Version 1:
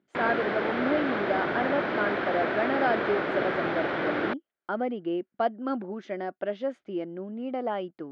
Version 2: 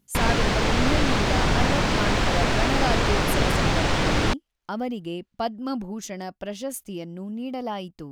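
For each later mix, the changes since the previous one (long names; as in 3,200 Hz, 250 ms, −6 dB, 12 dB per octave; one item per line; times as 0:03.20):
background +5.0 dB
master: remove loudspeaker in its box 270–2,900 Hz, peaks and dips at 360 Hz +6 dB, 610 Hz +4 dB, 970 Hz −4 dB, 1,500 Hz +5 dB, 2,700 Hz −7 dB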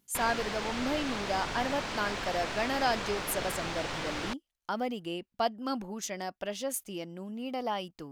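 background −10.5 dB
master: add low-shelf EQ 310 Hz −11 dB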